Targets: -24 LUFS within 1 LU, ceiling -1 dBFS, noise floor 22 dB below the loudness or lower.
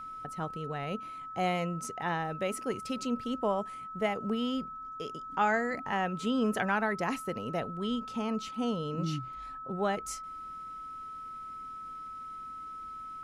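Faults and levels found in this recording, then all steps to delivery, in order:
steady tone 1.3 kHz; tone level -40 dBFS; loudness -34.0 LUFS; peak level -17.0 dBFS; loudness target -24.0 LUFS
-> band-stop 1.3 kHz, Q 30; trim +10 dB

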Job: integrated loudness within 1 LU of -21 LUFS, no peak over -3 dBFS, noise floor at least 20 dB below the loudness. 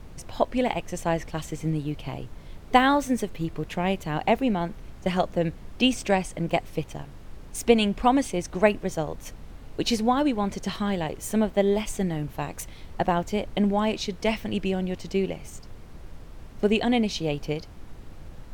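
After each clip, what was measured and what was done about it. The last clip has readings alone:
noise floor -44 dBFS; noise floor target -46 dBFS; loudness -26.0 LUFS; peak level -3.5 dBFS; loudness target -21.0 LUFS
-> noise print and reduce 6 dB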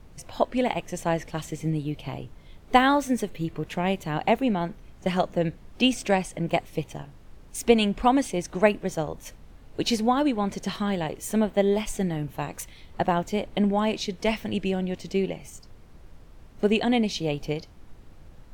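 noise floor -49 dBFS; loudness -26.0 LUFS; peak level -3.0 dBFS; loudness target -21.0 LUFS
-> trim +5 dB; peak limiter -3 dBFS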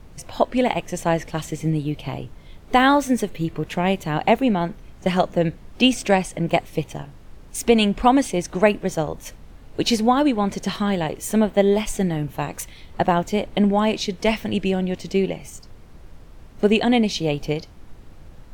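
loudness -21.5 LUFS; peak level -3.0 dBFS; noise floor -44 dBFS

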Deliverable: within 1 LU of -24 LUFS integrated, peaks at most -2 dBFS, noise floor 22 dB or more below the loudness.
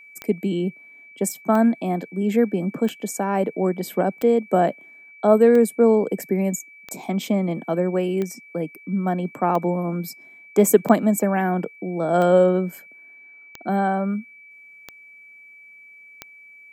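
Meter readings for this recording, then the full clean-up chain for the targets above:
clicks found 13; steady tone 2.3 kHz; tone level -44 dBFS; loudness -21.5 LUFS; peak level -1.0 dBFS; loudness target -24.0 LUFS
-> de-click; band-stop 2.3 kHz, Q 30; trim -2.5 dB

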